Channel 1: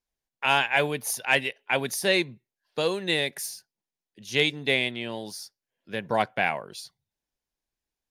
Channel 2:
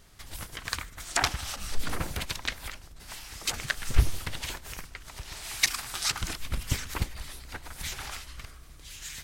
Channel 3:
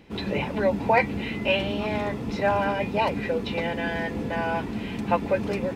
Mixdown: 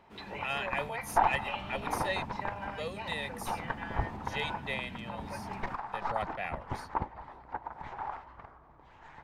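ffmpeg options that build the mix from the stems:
-filter_complex "[0:a]aecho=1:1:1.6:1,volume=0.15[s0];[1:a]highpass=f=200:p=1,aeval=exprs='(tanh(15.8*val(0)+0.65)-tanh(0.65))/15.8':c=same,lowpass=f=890:t=q:w=4.9,volume=1.26[s1];[2:a]asubboost=boost=9:cutoff=170,alimiter=limit=0.15:level=0:latency=1:release=83,lowshelf=f=330:g=-11,volume=0.251[s2];[s0][s1][s2]amix=inputs=3:normalize=0,equalizer=f=1800:w=2:g=4"

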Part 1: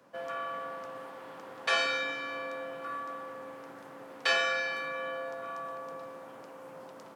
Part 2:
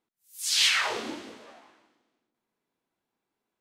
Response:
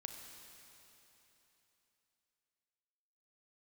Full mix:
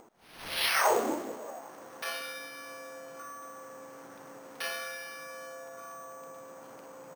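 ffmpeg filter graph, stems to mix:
-filter_complex "[0:a]adelay=350,volume=0.355[s0];[1:a]lowpass=f=1700:p=1,equalizer=f=650:w=0.59:g=14,volume=0.708[s1];[s0][s1]amix=inputs=2:normalize=0,acompressor=mode=upward:threshold=0.0112:ratio=2.5,acrusher=samples=6:mix=1:aa=0.000001"

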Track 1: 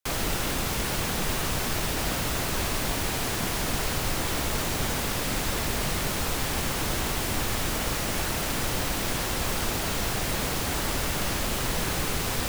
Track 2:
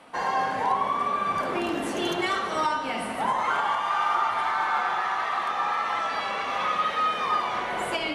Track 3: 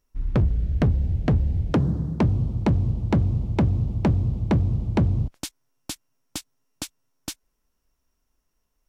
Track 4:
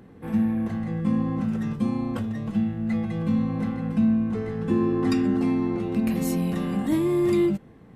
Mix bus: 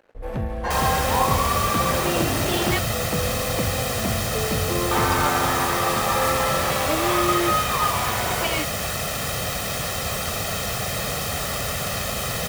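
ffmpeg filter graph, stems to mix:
-filter_complex "[0:a]highpass=78,aecho=1:1:1.6:0.69,adelay=650,volume=1.19[s0];[1:a]adelay=500,volume=1.33,asplit=3[s1][s2][s3];[s1]atrim=end=2.79,asetpts=PTS-STARTPTS,afade=t=out:st=2.786:d=0.004:c=hsin[s4];[s2]atrim=start=2.79:end=4.91,asetpts=PTS-STARTPTS,volume=0[s5];[s3]atrim=start=4.91,asetpts=PTS-STARTPTS,afade=t=in:d=0.004:c=hsin[s6];[s4][s5][s6]concat=n=3:v=0:a=1[s7];[2:a]volume=0.422[s8];[3:a]highpass=f=560:t=q:w=4.9,volume=1.06[s9];[s0][s7][s8][s9]amix=inputs=4:normalize=0,aeval=exprs='sgn(val(0))*max(abs(val(0))-0.00398,0)':c=same"

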